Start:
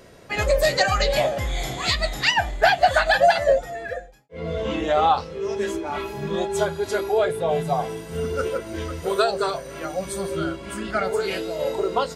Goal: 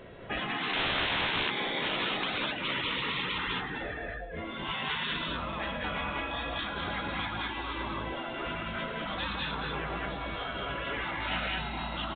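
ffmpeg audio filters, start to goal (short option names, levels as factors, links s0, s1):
-filter_complex "[0:a]asplit=2[s0][s1];[s1]aecho=0:1:108|189|206|210|447:0.335|0.501|0.447|0.631|0.178[s2];[s0][s2]amix=inputs=2:normalize=0,asettb=1/sr,asplit=3[s3][s4][s5];[s3]atrim=end=0.734[s6];[s4]atrim=start=0.73:end=1.52,asetpts=PTS-STARTPTS,afade=t=in:d=0.004:c=qsin,afade=t=out:st=0.786:d=0.004:c=qsin,aeval=exprs='(mod(6.68*val(0)+1,2)-1)/6.68':c=same[s7];[s5]atrim=start=1.516[s8];[s6][s7]acrossfade=d=0.004:c1=hsin:c2=qsin[s9];[s9][s8]acrossfade=d=0.004:c1=qsin:c2=hsin,afftfilt=real='re*lt(hypot(re,im),0.126)':imag='im*lt(hypot(re,im),0.126)':win_size=1024:overlap=0.75,aresample=8000,aresample=44100"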